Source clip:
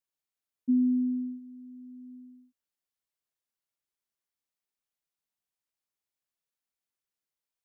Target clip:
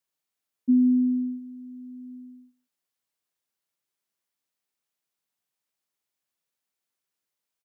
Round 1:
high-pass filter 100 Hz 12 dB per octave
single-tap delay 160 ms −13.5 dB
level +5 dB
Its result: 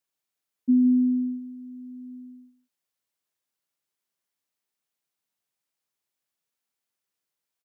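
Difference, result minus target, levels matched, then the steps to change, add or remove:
echo-to-direct +8.5 dB
change: single-tap delay 160 ms −22 dB

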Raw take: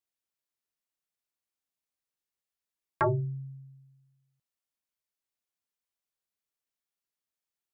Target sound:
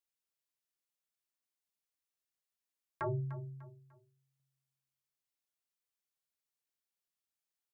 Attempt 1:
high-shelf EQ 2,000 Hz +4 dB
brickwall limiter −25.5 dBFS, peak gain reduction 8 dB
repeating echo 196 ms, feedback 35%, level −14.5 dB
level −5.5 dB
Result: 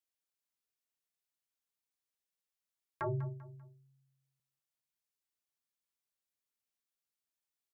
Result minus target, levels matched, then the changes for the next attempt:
echo 102 ms early
change: repeating echo 298 ms, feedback 35%, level −14.5 dB

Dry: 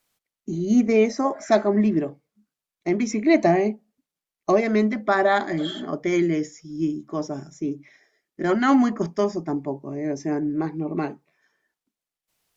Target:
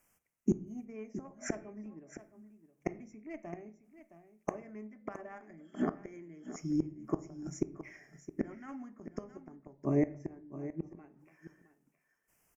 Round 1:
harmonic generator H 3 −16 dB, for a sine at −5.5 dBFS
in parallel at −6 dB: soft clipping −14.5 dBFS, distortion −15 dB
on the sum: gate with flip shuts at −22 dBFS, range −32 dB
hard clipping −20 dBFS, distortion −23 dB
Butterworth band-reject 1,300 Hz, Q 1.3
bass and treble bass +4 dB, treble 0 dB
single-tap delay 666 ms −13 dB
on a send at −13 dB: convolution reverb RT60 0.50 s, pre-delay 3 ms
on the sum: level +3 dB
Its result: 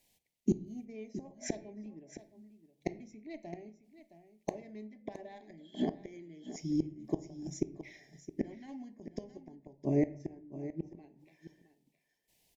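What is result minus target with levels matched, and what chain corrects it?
soft clipping: distortion +18 dB; 4,000 Hz band +6.5 dB
harmonic generator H 3 −16 dB, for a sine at −5.5 dBFS
in parallel at −6 dB: soft clipping −2.5 dBFS, distortion −33 dB
on the sum: gate with flip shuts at −22 dBFS, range −32 dB
hard clipping −20 dBFS, distortion −22 dB
Butterworth band-reject 3,900 Hz, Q 1.3
bass and treble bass +4 dB, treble 0 dB
single-tap delay 666 ms −13 dB
on a send at −13 dB: convolution reverb RT60 0.50 s, pre-delay 3 ms
on the sum: level +3 dB

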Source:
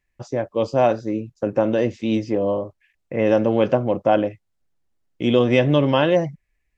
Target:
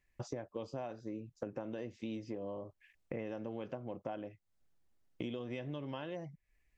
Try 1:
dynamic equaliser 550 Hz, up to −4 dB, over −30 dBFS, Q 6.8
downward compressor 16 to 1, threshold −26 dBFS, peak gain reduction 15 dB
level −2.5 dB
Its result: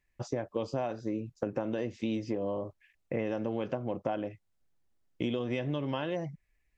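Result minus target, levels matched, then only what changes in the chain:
downward compressor: peak gain reduction −9 dB
change: downward compressor 16 to 1, threshold −35.5 dBFS, peak gain reduction 24 dB

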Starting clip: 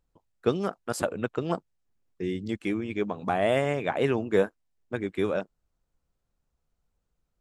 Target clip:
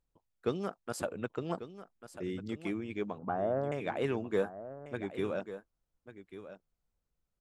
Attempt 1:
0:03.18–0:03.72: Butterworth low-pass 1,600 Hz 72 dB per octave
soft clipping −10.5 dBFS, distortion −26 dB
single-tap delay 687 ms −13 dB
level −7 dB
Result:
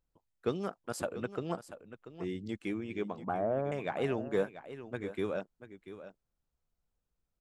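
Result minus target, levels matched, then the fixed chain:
echo 456 ms early
0:03.18–0:03.72: Butterworth low-pass 1,600 Hz 72 dB per octave
soft clipping −10.5 dBFS, distortion −26 dB
single-tap delay 1,143 ms −13 dB
level −7 dB

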